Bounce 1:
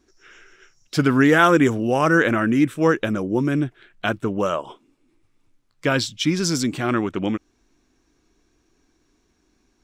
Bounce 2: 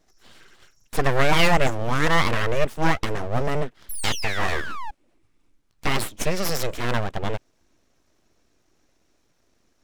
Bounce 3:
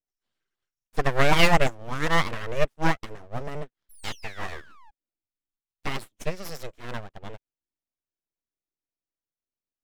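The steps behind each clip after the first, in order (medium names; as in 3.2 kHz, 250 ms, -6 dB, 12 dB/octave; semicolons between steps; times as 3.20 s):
painted sound fall, 3.89–4.91 s, 400–6000 Hz -27 dBFS; full-wave rectifier
upward expansion 2.5:1, over -36 dBFS; trim +1.5 dB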